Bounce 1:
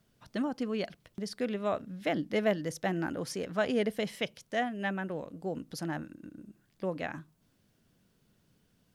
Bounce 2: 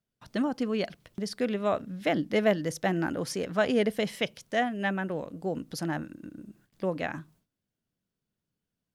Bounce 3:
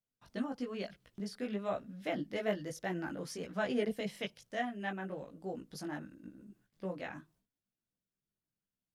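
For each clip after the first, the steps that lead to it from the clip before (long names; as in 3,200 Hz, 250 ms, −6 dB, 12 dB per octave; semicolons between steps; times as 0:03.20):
noise gate with hold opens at −57 dBFS; level +4 dB
multi-voice chorus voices 4, 0.99 Hz, delay 18 ms, depth 3 ms; level −6.5 dB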